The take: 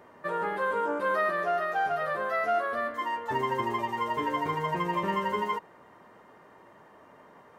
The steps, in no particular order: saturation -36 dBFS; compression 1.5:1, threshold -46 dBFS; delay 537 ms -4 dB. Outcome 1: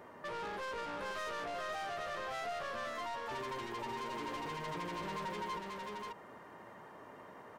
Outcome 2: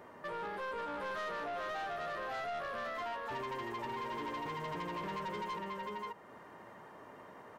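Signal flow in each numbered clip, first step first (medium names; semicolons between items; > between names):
saturation > delay > compression; delay > compression > saturation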